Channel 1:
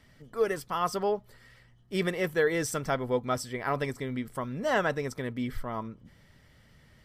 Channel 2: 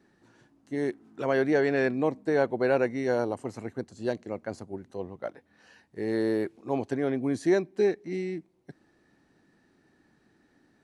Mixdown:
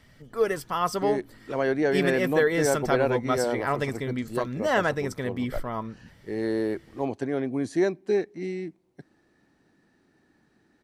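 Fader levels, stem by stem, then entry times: +3.0, 0.0 dB; 0.00, 0.30 s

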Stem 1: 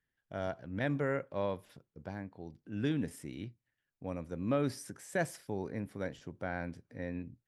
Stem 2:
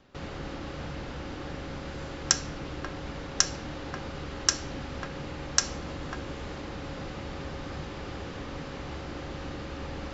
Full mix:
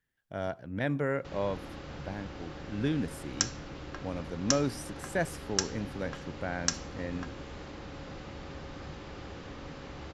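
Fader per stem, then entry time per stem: +2.5, -5.5 dB; 0.00, 1.10 s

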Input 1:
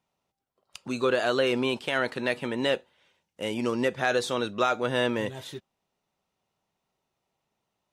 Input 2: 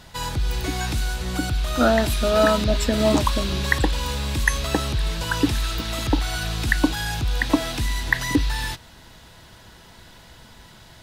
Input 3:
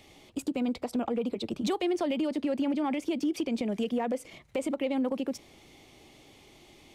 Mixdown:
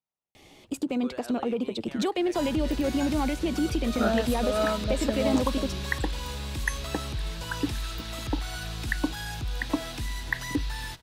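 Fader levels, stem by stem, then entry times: -18.5, -8.5, +2.0 dB; 0.00, 2.20, 0.35 s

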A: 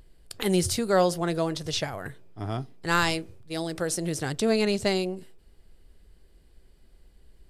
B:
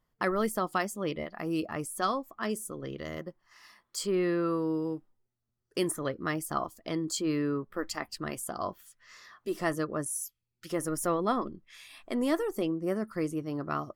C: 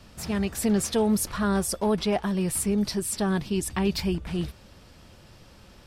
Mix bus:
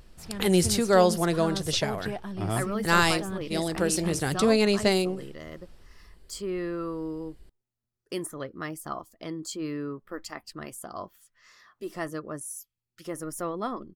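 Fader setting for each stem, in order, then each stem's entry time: +2.0, -3.5, -10.0 dB; 0.00, 2.35, 0.00 s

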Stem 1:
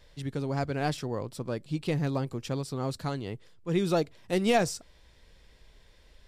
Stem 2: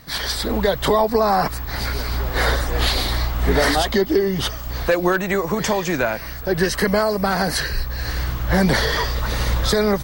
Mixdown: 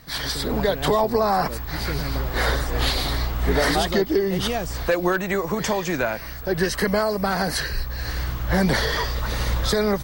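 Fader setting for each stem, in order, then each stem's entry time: -3.0, -3.0 dB; 0.00, 0.00 s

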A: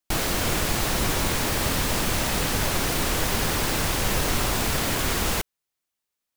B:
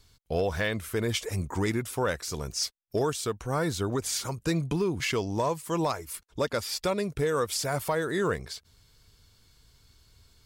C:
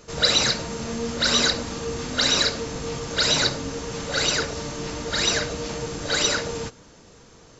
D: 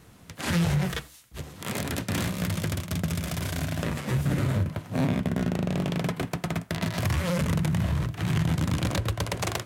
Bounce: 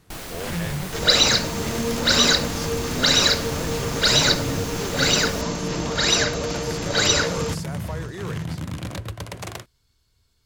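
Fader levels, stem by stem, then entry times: -10.0, -7.5, +3.0, -4.5 dB; 0.00, 0.00, 0.85, 0.00 s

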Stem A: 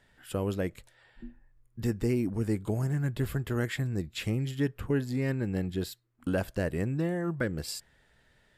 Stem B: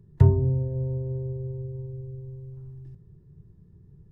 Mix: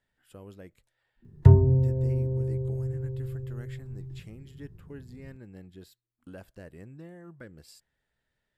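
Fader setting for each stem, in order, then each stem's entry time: -16.0, +2.0 dB; 0.00, 1.25 s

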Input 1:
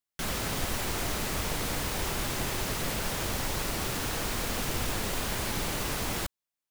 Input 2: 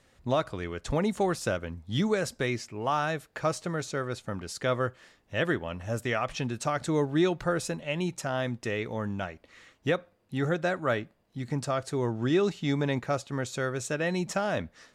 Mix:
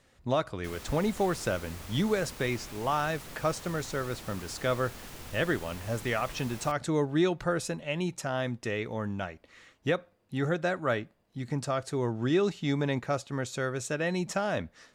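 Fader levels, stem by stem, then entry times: -13.5, -1.0 dB; 0.45, 0.00 s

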